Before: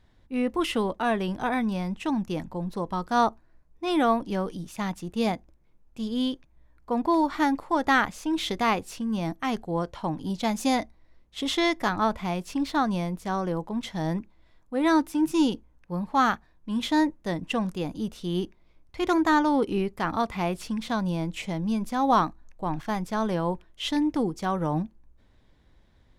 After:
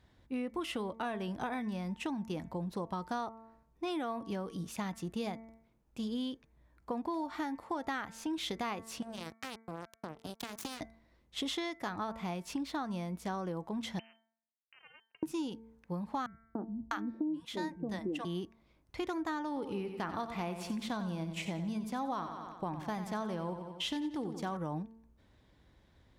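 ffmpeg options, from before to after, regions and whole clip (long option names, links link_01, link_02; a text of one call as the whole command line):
ffmpeg -i in.wav -filter_complex "[0:a]asettb=1/sr,asplit=3[link_01][link_02][link_03];[link_01]atrim=end=9.024[link_04];[link_02]atrim=start=9.02:end=10.81,asetpts=PTS-STARTPTS,afade=type=in:duration=0.004:curve=qsin,afade=type=out:start_time=1.786:duration=0.004:curve=qsin,equalizer=frequency=950:width=0.83:gain=-12,acompressor=threshold=-32dB:ratio=10:attack=3.2:release=140:knee=1:detection=peak,acrusher=bits=4:mix=0:aa=0.5[link_05];[link_03]atrim=start=10.806[link_06];[link_04][link_05]acrossfade=duration=0.004:curve1=hsin:curve2=qsin[link_07];[link_07][link_06]acrossfade=duration=0.004:curve1=qsin:curve2=hsin,asettb=1/sr,asplit=3[link_08][link_09][link_10];[link_08]atrim=end=13.994[link_11];[link_09]atrim=start=13.99:end=15.23,asetpts=PTS-STARTPTS,afade=type=in:duration=0.004:curve=qsin,afade=type=out:start_time=1.236:duration=0.004:curve=qsin,acompressor=threshold=-38dB:ratio=6:attack=3.2:release=140:knee=1:detection=peak,acrusher=bits=4:mix=0:aa=0.5,lowpass=frequency=2600:width_type=q:width=0.5098,lowpass=frequency=2600:width_type=q:width=0.6013,lowpass=frequency=2600:width_type=q:width=0.9,lowpass=frequency=2600:width_type=q:width=2.563,afreqshift=-3100[link_12];[link_10]atrim=start=15.226[link_13];[link_11][link_12]acrossfade=duration=0.004:curve1=hsin:curve2=qsin[link_14];[link_14][link_13]acrossfade=duration=0.004:curve1=qsin:curve2=hsin,asettb=1/sr,asplit=3[link_15][link_16][link_17];[link_15]atrim=end=16.264[link_18];[link_16]atrim=start=16.26:end=18.25,asetpts=PTS-STARTPTS,afade=type=in:duration=0.004:curve=qsin,afade=type=out:start_time=1.986:duration=0.004:curve=qsin,equalizer=frequency=330:width=2.9:gain=12.5,acrossover=split=170|590[link_19][link_20][link_21];[link_20]adelay=290[link_22];[link_21]adelay=650[link_23];[link_19][link_22][link_23]amix=inputs=3:normalize=0,atrim=end_sample=87759[link_24];[link_17]atrim=start=18.246[link_25];[link_18][link_24]acrossfade=duration=0.004:curve1=hsin:curve2=qsin[link_26];[link_26][link_25]acrossfade=duration=0.004:curve1=qsin:curve2=hsin,asettb=1/sr,asplit=3[link_27][link_28][link_29];[link_27]atrim=end=19.474[link_30];[link_28]atrim=start=19.47:end=24.57,asetpts=PTS-STARTPTS,afade=type=in:duration=0.004:curve=qsin,afade=type=out:start_time=5.096:duration=0.004:curve=qsin,agate=range=-33dB:threshold=-41dB:ratio=3:release=100:detection=peak,aecho=1:1:91|182|273|364|455:0.299|0.143|0.0688|0.033|0.0158,atrim=end_sample=224910[link_31];[link_29]atrim=start=24.566[link_32];[link_30][link_31]acrossfade=duration=0.004:curve1=hsin:curve2=qsin[link_33];[link_33][link_32]acrossfade=duration=0.004:curve1=qsin:curve2=hsin,bandreject=frequency=224.8:width_type=h:width=4,bandreject=frequency=449.6:width_type=h:width=4,bandreject=frequency=674.4:width_type=h:width=4,bandreject=frequency=899.2:width_type=h:width=4,bandreject=frequency=1124:width_type=h:width=4,bandreject=frequency=1348.8:width_type=h:width=4,bandreject=frequency=1573.6:width_type=h:width=4,bandreject=frequency=1798.4:width_type=h:width=4,bandreject=frequency=2023.2:width_type=h:width=4,bandreject=frequency=2248:width_type=h:width=4,acompressor=threshold=-32dB:ratio=10,highpass=52,volume=-1.5dB" out.wav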